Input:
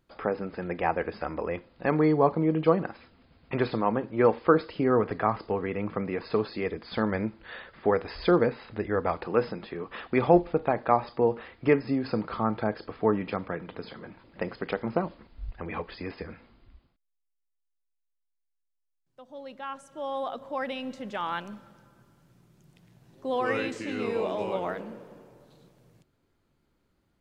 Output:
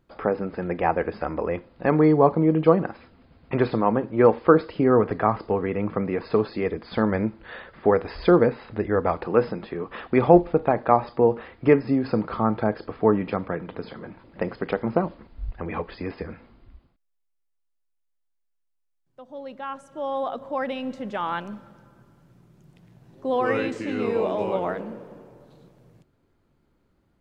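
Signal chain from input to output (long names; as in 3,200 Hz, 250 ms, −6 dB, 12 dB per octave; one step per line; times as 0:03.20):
high-shelf EQ 2,100 Hz −8 dB
level +5.5 dB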